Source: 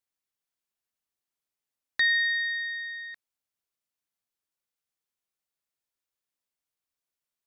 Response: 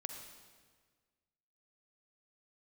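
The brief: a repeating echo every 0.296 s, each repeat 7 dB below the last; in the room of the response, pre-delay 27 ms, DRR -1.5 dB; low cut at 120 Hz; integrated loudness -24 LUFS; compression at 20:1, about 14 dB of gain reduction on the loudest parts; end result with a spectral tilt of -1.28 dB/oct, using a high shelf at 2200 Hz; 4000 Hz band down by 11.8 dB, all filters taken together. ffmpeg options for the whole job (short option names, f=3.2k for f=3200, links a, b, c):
-filter_complex "[0:a]highpass=120,highshelf=f=2.2k:g=-5,equalizer=f=4k:t=o:g=-8.5,acompressor=threshold=-39dB:ratio=20,aecho=1:1:296|592|888|1184|1480:0.447|0.201|0.0905|0.0407|0.0183,asplit=2[a][b];[1:a]atrim=start_sample=2205,adelay=27[c];[b][c]afir=irnorm=-1:irlink=0,volume=3.5dB[d];[a][d]amix=inputs=2:normalize=0,volume=15dB"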